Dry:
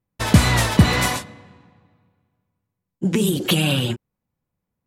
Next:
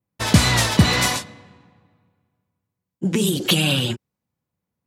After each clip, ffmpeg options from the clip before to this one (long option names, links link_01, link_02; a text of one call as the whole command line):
ffmpeg -i in.wav -af "highpass=67,adynamicequalizer=threshold=0.0112:dfrequency=5100:dqfactor=0.75:tfrequency=5100:tqfactor=0.75:attack=5:release=100:ratio=0.375:range=3:mode=boostabove:tftype=bell,volume=-1dB" out.wav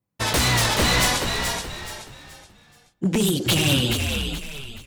ffmpeg -i in.wav -filter_complex "[0:a]aeval=exprs='0.2*(abs(mod(val(0)/0.2+3,4)-2)-1)':channel_layout=same,asplit=5[link_01][link_02][link_03][link_04][link_05];[link_02]adelay=426,afreqshift=-68,volume=-5dB[link_06];[link_03]adelay=852,afreqshift=-136,volume=-14.4dB[link_07];[link_04]adelay=1278,afreqshift=-204,volume=-23.7dB[link_08];[link_05]adelay=1704,afreqshift=-272,volume=-33.1dB[link_09];[link_01][link_06][link_07][link_08][link_09]amix=inputs=5:normalize=0" out.wav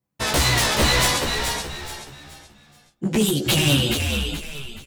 ffmpeg -i in.wav -filter_complex "[0:a]asplit=2[link_01][link_02];[link_02]adelay=14,volume=-2.5dB[link_03];[link_01][link_03]amix=inputs=2:normalize=0,volume=-1dB" out.wav